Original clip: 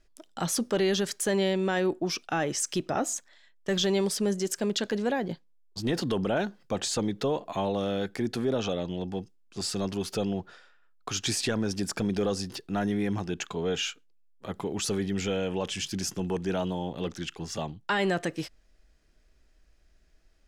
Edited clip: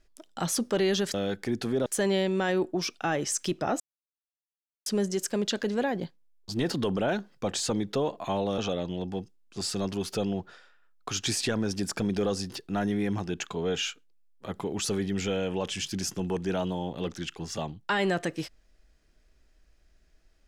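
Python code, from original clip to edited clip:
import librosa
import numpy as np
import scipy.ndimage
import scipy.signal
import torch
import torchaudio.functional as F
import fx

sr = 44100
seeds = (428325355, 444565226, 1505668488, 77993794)

y = fx.edit(x, sr, fx.silence(start_s=3.08, length_s=1.06),
    fx.move(start_s=7.86, length_s=0.72, to_s=1.14), tone=tone)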